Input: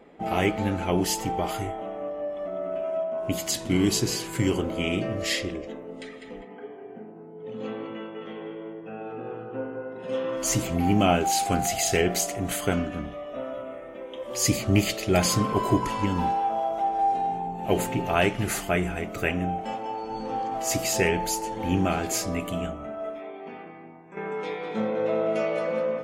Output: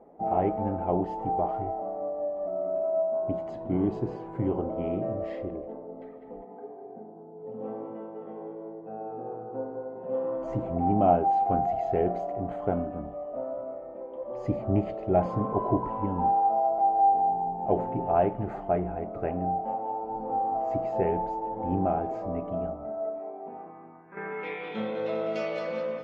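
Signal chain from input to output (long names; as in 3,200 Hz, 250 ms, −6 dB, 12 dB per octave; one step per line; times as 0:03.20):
low-pass filter sweep 770 Hz → 4,700 Hz, 0:23.49–0:25.12
level −5 dB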